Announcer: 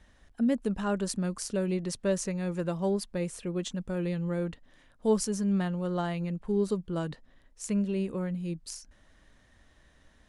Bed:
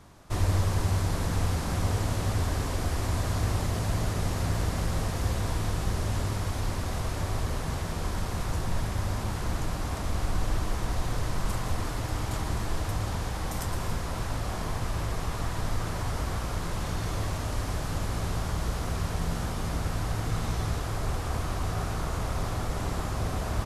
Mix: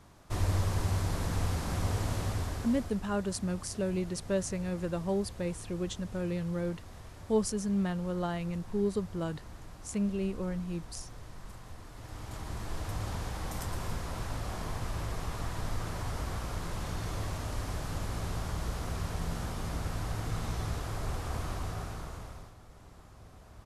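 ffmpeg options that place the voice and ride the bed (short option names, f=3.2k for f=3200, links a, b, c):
-filter_complex "[0:a]adelay=2250,volume=-2.5dB[a];[1:a]volume=8.5dB,afade=t=out:st=2.17:d=0.84:silence=0.211349,afade=t=in:st=11.89:d=1.19:silence=0.237137,afade=t=out:st=21.49:d=1.05:silence=0.125893[b];[a][b]amix=inputs=2:normalize=0"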